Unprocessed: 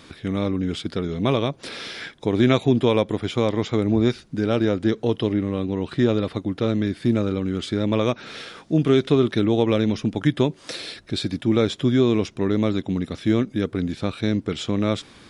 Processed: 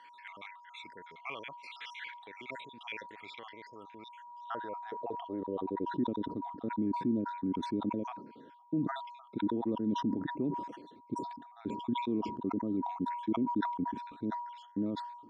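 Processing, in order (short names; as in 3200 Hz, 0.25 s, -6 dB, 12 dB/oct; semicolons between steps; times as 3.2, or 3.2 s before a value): random spectral dropouts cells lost 60%; limiter -15 dBFS, peak gain reduction 8.5 dB; whine 960 Hz -37 dBFS; band-pass sweep 2100 Hz -> 270 Hz, 3.88–6.04; sustainer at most 61 dB/s; gain -3.5 dB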